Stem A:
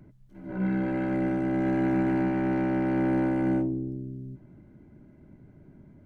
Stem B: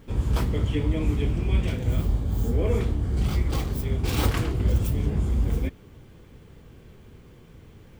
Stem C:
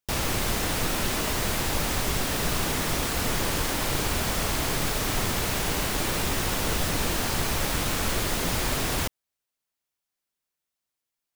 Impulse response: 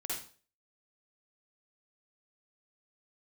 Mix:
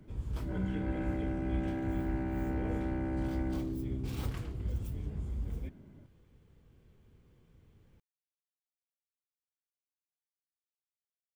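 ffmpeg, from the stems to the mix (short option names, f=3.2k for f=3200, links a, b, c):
-filter_complex "[0:a]acompressor=threshold=-30dB:ratio=6,volume=-3.5dB[a];[1:a]lowshelf=f=190:g=5,volume=-17.5dB[b];[a][b]amix=inputs=2:normalize=0"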